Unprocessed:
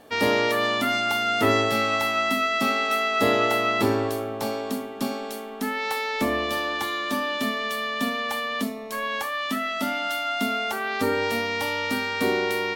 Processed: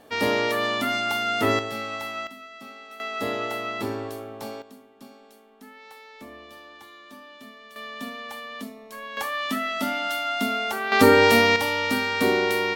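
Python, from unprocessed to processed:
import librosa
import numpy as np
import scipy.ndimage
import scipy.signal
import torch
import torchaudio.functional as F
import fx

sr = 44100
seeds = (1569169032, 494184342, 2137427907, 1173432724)

y = fx.gain(x, sr, db=fx.steps((0.0, -1.5), (1.59, -8.5), (2.27, -19.5), (3.0, -7.5), (4.62, -19.0), (7.76, -9.0), (9.17, 0.0), (10.92, 9.0), (11.56, 2.0)))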